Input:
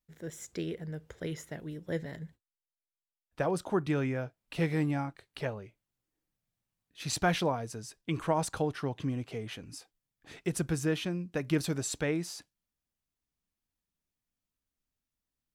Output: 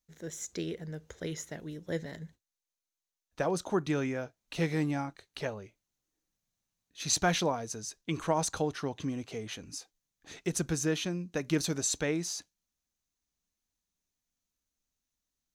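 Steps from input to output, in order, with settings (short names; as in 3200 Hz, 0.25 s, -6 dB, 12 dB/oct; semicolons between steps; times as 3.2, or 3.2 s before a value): thirty-one-band EQ 125 Hz -7 dB, 4000 Hz +5 dB, 6300 Hz +11 dB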